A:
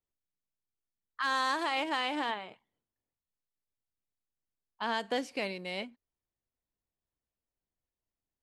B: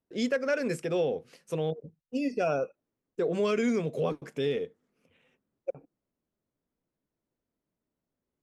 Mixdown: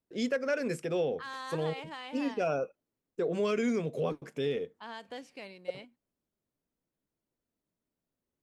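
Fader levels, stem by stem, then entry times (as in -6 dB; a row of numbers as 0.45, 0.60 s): -11.0, -2.5 dB; 0.00, 0.00 s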